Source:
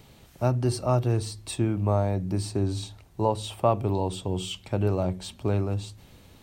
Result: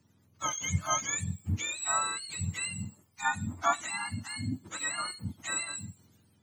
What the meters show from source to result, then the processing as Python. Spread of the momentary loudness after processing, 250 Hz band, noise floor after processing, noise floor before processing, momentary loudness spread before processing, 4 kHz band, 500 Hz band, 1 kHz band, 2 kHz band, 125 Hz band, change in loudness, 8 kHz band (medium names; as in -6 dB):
8 LU, -11.5 dB, -66 dBFS, -54 dBFS, 7 LU, 0.0 dB, -17.5 dB, -1.5 dB, +11.0 dB, -11.5 dB, -5.0 dB, +9.0 dB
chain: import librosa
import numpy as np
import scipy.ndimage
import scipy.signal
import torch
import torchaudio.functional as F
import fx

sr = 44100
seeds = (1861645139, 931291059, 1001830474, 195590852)

y = fx.octave_mirror(x, sr, pivot_hz=890.0)
y = fx.band_widen(y, sr, depth_pct=40)
y = F.gain(torch.from_numpy(y), -4.5).numpy()